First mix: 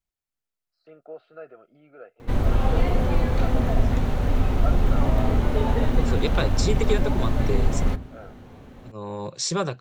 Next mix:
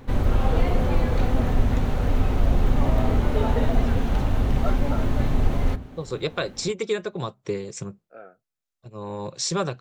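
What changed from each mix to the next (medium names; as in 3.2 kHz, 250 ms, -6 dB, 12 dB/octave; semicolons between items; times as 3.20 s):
background: entry -2.20 s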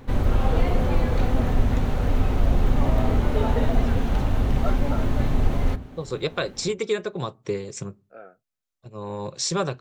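second voice: send on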